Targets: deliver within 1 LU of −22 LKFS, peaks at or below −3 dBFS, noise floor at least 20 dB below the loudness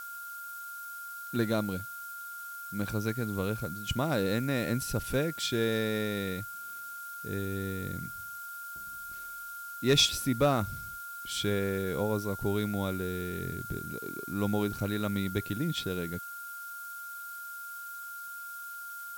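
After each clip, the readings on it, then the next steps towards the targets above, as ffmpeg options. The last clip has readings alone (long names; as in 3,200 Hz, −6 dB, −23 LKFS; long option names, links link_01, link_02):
interfering tone 1,400 Hz; level of the tone −40 dBFS; background noise floor −42 dBFS; target noise floor −53 dBFS; integrated loudness −33.0 LKFS; sample peak −15.0 dBFS; target loudness −22.0 LKFS
→ -af "bandreject=frequency=1400:width=30"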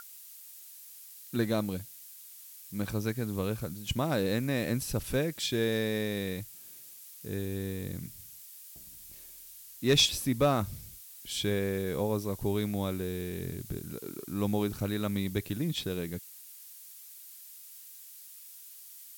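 interfering tone none found; background noise floor −50 dBFS; target noise floor −52 dBFS
→ -af "afftdn=noise_reduction=6:noise_floor=-50"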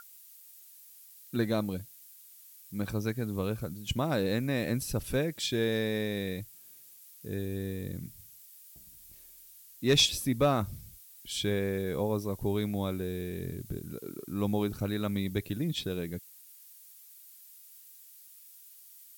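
background noise floor −54 dBFS; integrated loudness −32.0 LKFS; sample peak −15.5 dBFS; target loudness −22.0 LKFS
→ -af "volume=10dB"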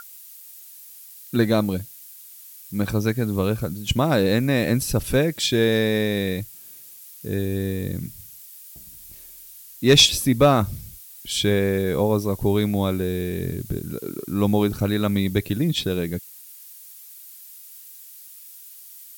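integrated loudness −22.0 LKFS; sample peak −5.5 dBFS; background noise floor −44 dBFS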